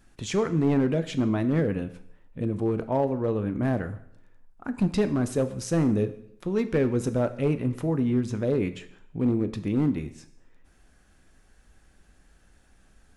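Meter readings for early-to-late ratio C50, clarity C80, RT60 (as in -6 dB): 14.0 dB, 16.5 dB, 0.70 s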